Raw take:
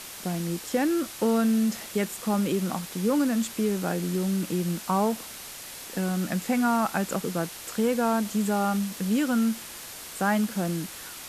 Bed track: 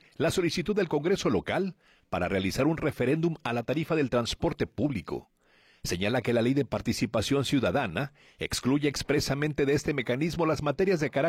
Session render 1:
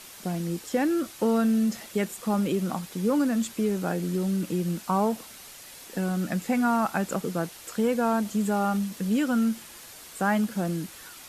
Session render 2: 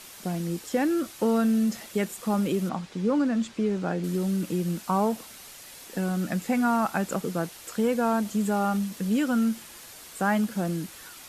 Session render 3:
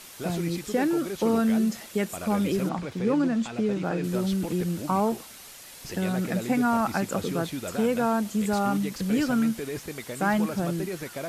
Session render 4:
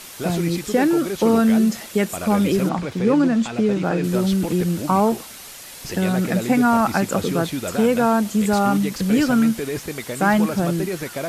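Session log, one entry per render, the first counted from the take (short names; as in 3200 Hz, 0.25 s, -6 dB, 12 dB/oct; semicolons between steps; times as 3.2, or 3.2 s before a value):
denoiser 6 dB, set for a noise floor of -41 dBFS
2.69–4.04 air absorption 95 m
add bed track -8.5 dB
gain +7 dB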